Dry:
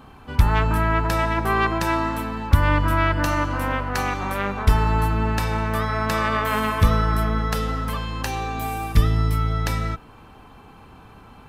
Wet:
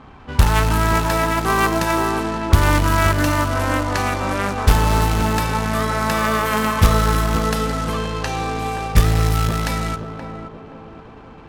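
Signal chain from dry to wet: companded quantiser 4-bit; low-pass opened by the level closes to 2400 Hz, open at -17.5 dBFS; narrowing echo 0.525 s, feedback 57%, band-pass 400 Hz, level -3.5 dB; gain +2.5 dB

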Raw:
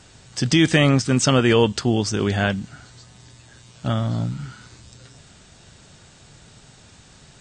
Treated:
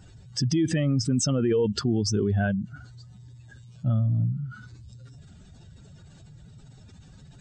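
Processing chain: spectral contrast raised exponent 2; limiter -16.5 dBFS, peak gain reduction 9.5 dB

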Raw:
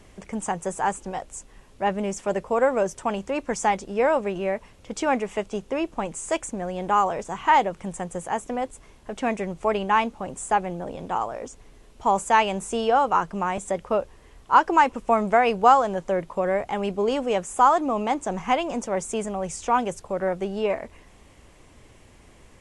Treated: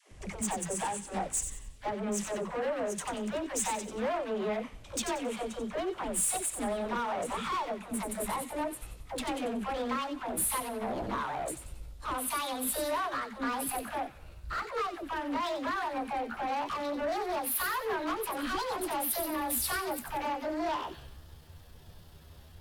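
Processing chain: gliding pitch shift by +8.5 st starting unshifted; compressor 3:1, threshold -31 dBFS, peak gain reduction 14.5 dB; limiter -26 dBFS, peak gain reduction 8.5 dB; overloaded stage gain 33 dB; dispersion lows, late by 0.11 s, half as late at 410 Hz; tube stage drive 34 dB, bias 0.3; thin delay 92 ms, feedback 44%, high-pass 2100 Hz, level -6.5 dB; three-band expander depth 70%; gain +7 dB

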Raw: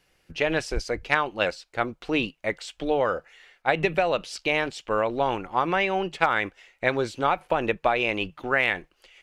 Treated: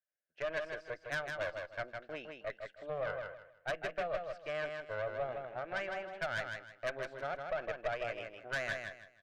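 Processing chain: double band-pass 1000 Hz, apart 1.3 oct; tube stage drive 28 dB, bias 0.6; gate -58 dBFS, range -19 dB; feedback echo 0.158 s, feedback 27%, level -5 dB; gain -2.5 dB

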